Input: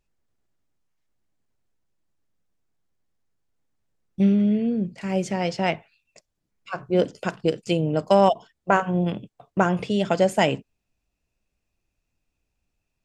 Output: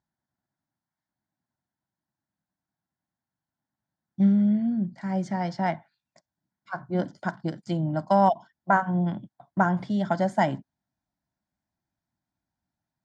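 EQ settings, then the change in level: band-pass 150–3500 Hz; peaking EQ 1.2 kHz -13 dB 0.2 oct; static phaser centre 1.1 kHz, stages 4; +2.5 dB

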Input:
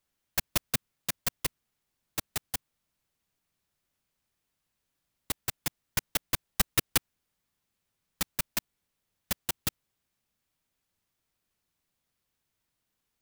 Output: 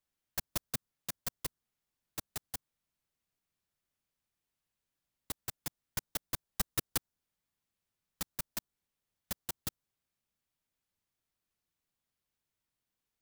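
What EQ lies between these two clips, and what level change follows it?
dynamic bell 2.5 kHz, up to -6 dB, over -48 dBFS, Q 1.5; -7.0 dB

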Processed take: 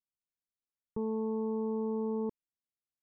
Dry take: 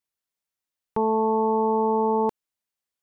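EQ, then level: boxcar filter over 59 samples; -5.5 dB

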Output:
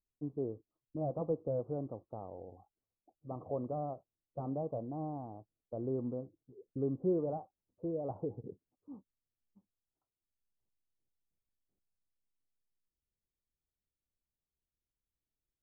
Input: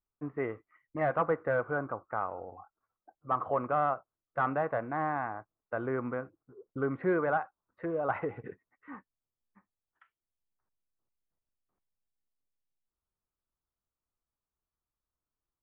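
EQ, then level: Gaussian low-pass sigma 15 samples; 0.0 dB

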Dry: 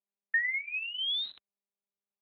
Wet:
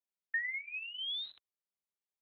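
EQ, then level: peaking EQ 230 Hz -6 dB 0.81 oct; -6.5 dB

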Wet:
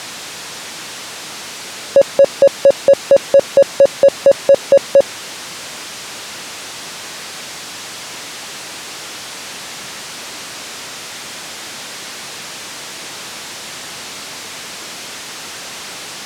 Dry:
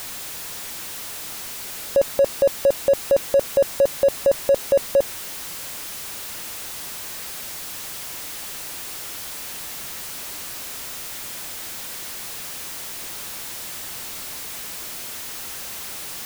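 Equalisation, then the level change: band-pass 130–6700 Hz; +8.5 dB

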